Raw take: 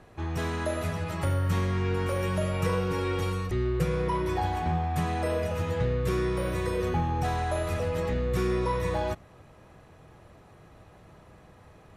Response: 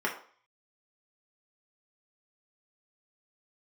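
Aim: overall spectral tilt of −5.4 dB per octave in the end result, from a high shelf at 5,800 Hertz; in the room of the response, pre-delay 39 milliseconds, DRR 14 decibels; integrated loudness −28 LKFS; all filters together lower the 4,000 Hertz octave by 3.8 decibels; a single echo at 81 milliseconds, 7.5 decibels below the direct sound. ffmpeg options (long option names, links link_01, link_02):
-filter_complex "[0:a]equalizer=frequency=4000:width_type=o:gain=-3,highshelf=frequency=5800:gain=-6,aecho=1:1:81:0.422,asplit=2[link_01][link_02];[1:a]atrim=start_sample=2205,adelay=39[link_03];[link_02][link_03]afir=irnorm=-1:irlink=0,volume=-23.5dB[link_04];[link_01][link_04]amix=inputs=2:normalize=0"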